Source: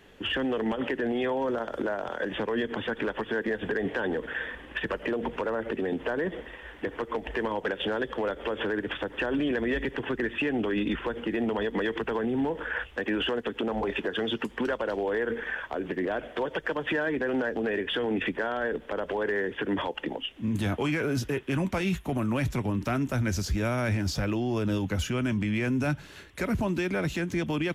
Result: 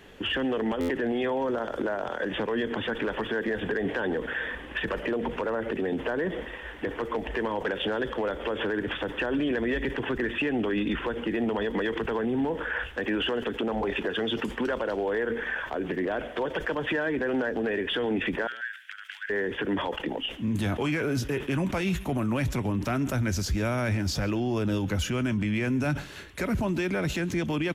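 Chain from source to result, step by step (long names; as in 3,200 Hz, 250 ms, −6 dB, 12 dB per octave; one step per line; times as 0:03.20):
in parallel at +3 dB: brickwall limiter −29 dBFS, peak gain reduction 10 dB
0:18.47–0:19.30: on the sum: Chebyshev high-pass filter 1,500 Hz, order 5
single-tap delay 137 ms −23 dB
buffer that repeats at 0:00.80, samples 512, times 7
level that may fall only so fast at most 140 dB per second
level −3.5 dB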